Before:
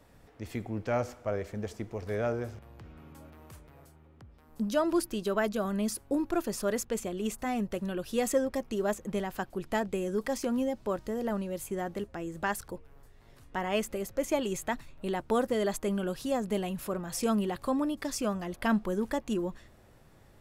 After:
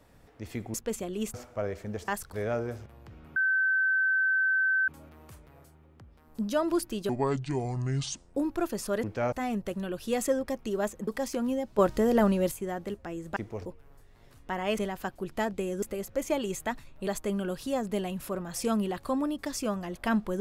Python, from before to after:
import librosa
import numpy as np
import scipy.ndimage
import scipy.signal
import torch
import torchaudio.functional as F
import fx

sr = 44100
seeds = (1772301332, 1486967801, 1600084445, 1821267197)

y = fx.edit(x, sr, fx.swap(start_s=0.74, length_s=0.29, other_s=6.78, other_length_s=0.6),
    fx.swap(start_s=1.77, length_s=0.29, other_s=12.46, other_length_s=0.25),
    fx.insert_tone(at_s=3.09, length_s=1.52, hz=1540.0, db=-22.5),
    fx.speed_span(start_s=5.3, length_s=0.79, speed=0.63),
    fx.move(start_s=9.13, length_s=1.04, to_s=13.84),
    fx.clip_gain(start_s=10.88, length_s=0.73, db=9.0),
    fx.cut(start_s=15.09, length_s=0.57), tone=tone)